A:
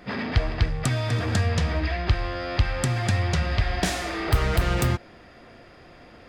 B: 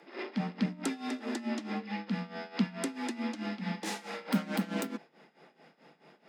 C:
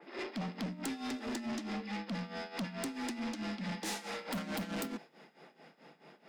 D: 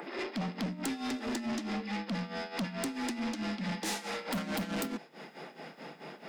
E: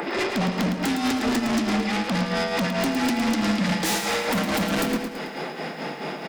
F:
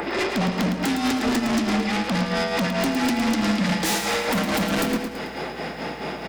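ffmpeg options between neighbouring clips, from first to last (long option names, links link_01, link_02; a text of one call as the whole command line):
ffmpeg -i in.wav -af "afreqshift=140,tremolo=f=4.6:d=0.83,volume=-8dB" out.wav
ffmpeg -i in.wav -af "aeval=exprs='(tanh(56.2*val(0)+0.05)-tanh(0.05))/56.2':channel_layout=same,adynamicequalizer=threshold=0.00141:dfrequency=3300:dqfactor=0.7:tfrequency=3300:tqfactor=0.7:attack=5:release=100:ratio=0.375:range=2:mode=boostabove:tftype=highshelf,volume=1dB" out.wav
ffmpeg -i in.wav -af "acompressor=mode=upward:threshold=-40dB:ratio=2.5,volume=3.5dB" out.wav
ffmpeg -i in.wav -filter_complex "[0:a]aeval=exprs='0.0596*sin(PI/2*2.51*val(0)/0.0596)':channel_layout=same,asplit=2[link_01][link_02];[link_02]aecho=0:1:110|220|330|440|550|660:0.422|0.215|0.11|0.0559|0.0285|0.0145[link_03];[link_01][link_03]amix=inputs=2:normalize=0,volume=3dB" out.wav
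ffmpeg -i in.wav -af "aeval=exprs='val(0)+0.00355*(sin(2*PI*60*n/s)+sin(2*PI*2*60*n/s)/2+sin(2*PI*3*60*n/s)/3+sin(2*PI*4*60*n/s)/4+sin(2*PI*5*60*n/s)/5)':channel_layout=same,volume=1dB" out.wav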